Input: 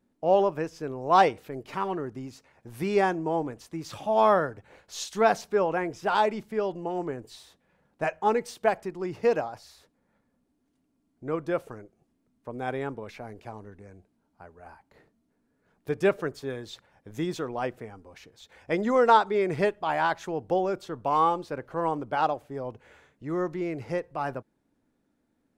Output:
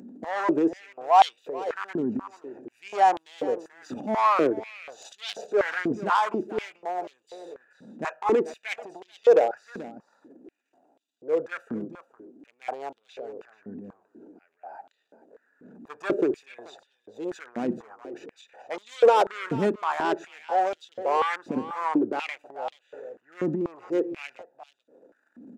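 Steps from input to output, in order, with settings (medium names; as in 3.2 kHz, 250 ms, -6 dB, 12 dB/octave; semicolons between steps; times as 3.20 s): local Wiener filter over 41 samples; peaking EQ 7 kHz +10 dB 0.5 oct; in parallel at 0 dB: peak limiter -14.5 dBFS, peak gain reduction 7 dB; on the sum: transient shaper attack -6 dB, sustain +11 dB; upward compressor, threshold -35 dBFS; saturation -15.5 dBFS, distortion -11 dB; on a send: delay 434 ms -14.5 dB; on the sum: step-sequenced high-pass 4.1 Hz 230–3400 Hz; trim -4 dB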